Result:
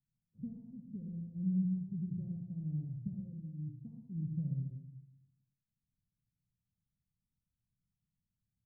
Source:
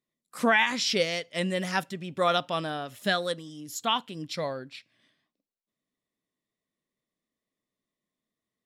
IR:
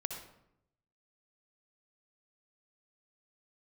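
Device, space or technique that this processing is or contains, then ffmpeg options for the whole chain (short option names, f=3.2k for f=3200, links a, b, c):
club heard from the street: -filter_complex "[0:a]alimiter=limit=-22.5dB:level=0:latency=1:release=206,lowpass=f=130:w=0.5412,lowpass=f=130:w=1.3066[a];[1:a]atrim=start_sample=2205[b];[a][b]afir=irnorm=-1:irlink=0,volume=13dB"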